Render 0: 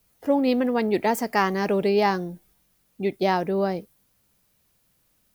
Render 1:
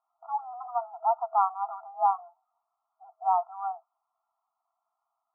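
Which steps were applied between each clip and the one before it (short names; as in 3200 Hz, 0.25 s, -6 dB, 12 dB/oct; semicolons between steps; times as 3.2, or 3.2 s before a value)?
FFT band-pass 650–1400 Hz; tilt -3 dB/oct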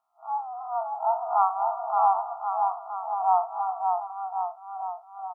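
time blur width 87 ms; on a send: bouncing-ball echo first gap 0.57 s, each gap 0.9×, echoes 5; on the sum: gain +5 dB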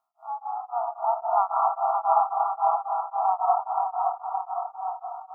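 digital reverb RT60 1.9 s, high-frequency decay 0.95×, pre-delay 50 ms, DRR -2.5 dB; beating tremolo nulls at 3.7 Hz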